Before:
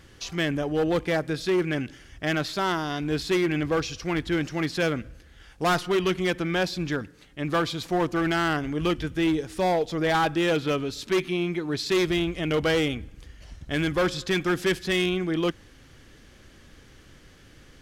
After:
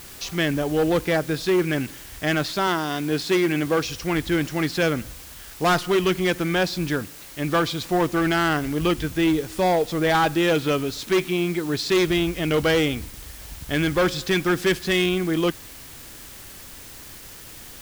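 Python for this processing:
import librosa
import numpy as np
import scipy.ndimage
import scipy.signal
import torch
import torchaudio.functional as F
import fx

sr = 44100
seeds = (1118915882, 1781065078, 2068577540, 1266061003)

p1 = fx.highpass(x, sr, hz=140.0, slope=12, at=(2.67, 3.85))
p2 = fx.quant_dither(p1, sr, seeds[0], bits=6, dither='triangular')
y = p1 + (p2 * 10.0 ** (-6.5 / 20.0))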